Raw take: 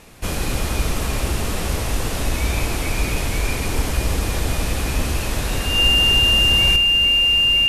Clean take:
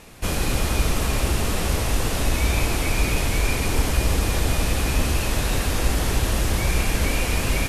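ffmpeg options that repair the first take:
-af "bandreject=f=2.8k:w=30,asetnsamples=n=441:p=0,asendcmd='6.76 volume volume 8dB',volume=0dB"

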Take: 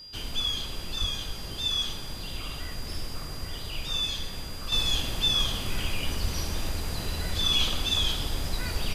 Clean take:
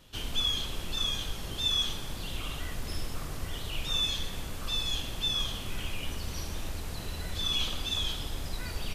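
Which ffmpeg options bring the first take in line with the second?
-filter_complex "[0:a]bandreject=f=4.8k:w=30,asplit=3[a][b][c];[a]afade=t=out:st=1:d=0.02[d];[b]highpass=f=140:w=0.5412,highpass=f=140:w=1.3066,afade=t=in:st=1:d=0.02,afade=t=out:st=1.12:d=0.02[e];[c]afade=t=in:st=1.12:d=0.02[f];[d][e][f]amix=inputs=3:normalize=0,asplit=3[g][h][i];[g]afade=t=out:st=6.21:d=0.02[j];[h]highpass=f=140:w=0.5412,highpass=f=140:w=1.3066,afade=t=in:st=6.21:d=0.02,afade=t=out:st=6.33:d=0.02[k];[i]afade=t=in:st=6.33:d=0.02[l];[j][k][l]amix=inputs=3:normalize=0,asetnsamples=n=441:p=0,asendcmd='4.72 volume volume -5.5dB',volume=0dB"

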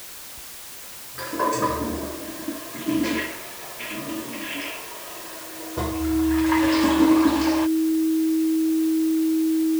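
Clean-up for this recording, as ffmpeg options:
-af "bandreject=f=320:w=30,afftdn=nr=30:nf=-39"

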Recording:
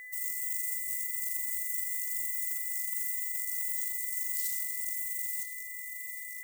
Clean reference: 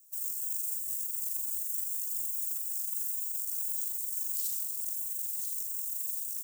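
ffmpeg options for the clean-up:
-af "adeclick=t=4,bandreject=f=2k:w=30,asetnsamples=n=441:p=0,asendcmd='5.43 volume volume 7dB',volume=0dB"

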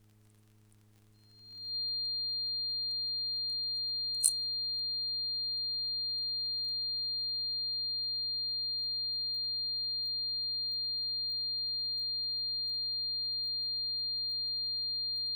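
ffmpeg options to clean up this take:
-af "adeclick=t=4,bandreject=f=105.9:t=h:w=4,bandreject=f=211.8:t=h:w=4,bandreject=f=317.7:t=h:w=4,bandreject=f=423.6:t=h:w=4,bandreject=f=4.2k:w=30,agate=range=-21dB:threshold=-41dB"

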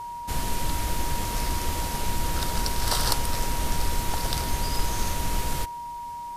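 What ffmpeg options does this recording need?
-af "bandreject=f=950:w=30"

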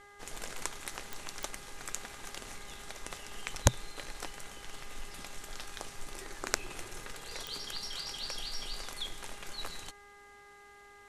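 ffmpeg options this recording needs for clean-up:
-af "adeclick=t=4,bandreject=f=406.3:t=h:w=4,bandreject=f=812.6:t=h:w=4,bandreject=f=1.2189k:t=h:w=4,bandreject=f=1.6252k:t=h:w=4,bandreject=f=2.0315k:t=h:w=4"

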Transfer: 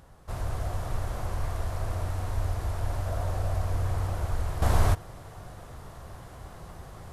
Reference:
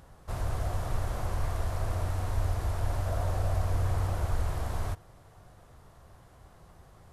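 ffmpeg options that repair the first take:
-af "asetnsamples=n=441:p=0,asendcmd='4.62 volume volume -10.5dB',volume=0dB"

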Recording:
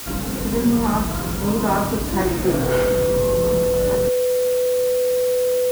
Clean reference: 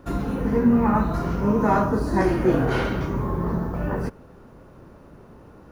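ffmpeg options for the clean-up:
-af "bandreject=f=500:w=30,afwtdn=0.022"

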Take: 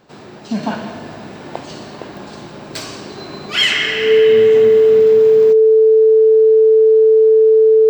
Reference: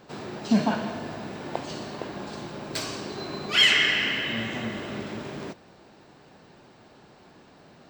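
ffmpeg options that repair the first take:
-af "adeclick=t=4,bandreject=f=440:w=30,asetnsamples=n=441:p=0,asendcmd='0.63 volume volume -4dB',volume=0dB"

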